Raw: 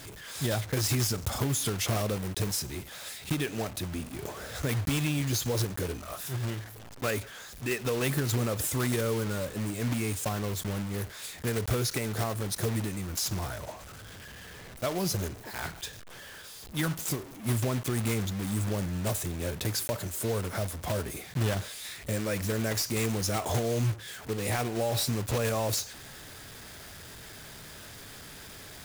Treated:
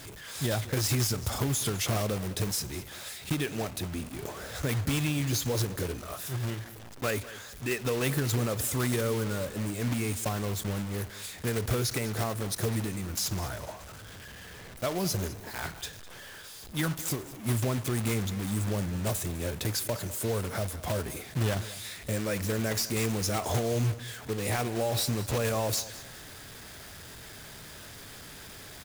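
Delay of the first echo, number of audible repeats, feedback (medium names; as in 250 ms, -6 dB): 204 ms, 2, 29%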